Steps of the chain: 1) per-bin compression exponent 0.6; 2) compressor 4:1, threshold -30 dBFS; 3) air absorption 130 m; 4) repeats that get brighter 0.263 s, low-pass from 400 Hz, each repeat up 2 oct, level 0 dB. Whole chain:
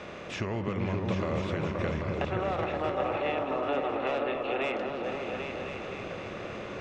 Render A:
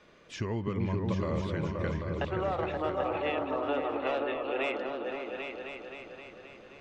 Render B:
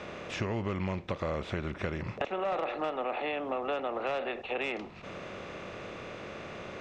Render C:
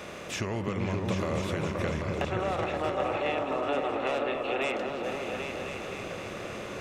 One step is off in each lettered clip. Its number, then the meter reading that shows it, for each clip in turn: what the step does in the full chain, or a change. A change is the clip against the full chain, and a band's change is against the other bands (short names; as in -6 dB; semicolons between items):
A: 1, 125 Hz band +2.0 dB; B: 4, echo-to-direct -1.0 dB to none; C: 3, 4 kHz band +2.5 dB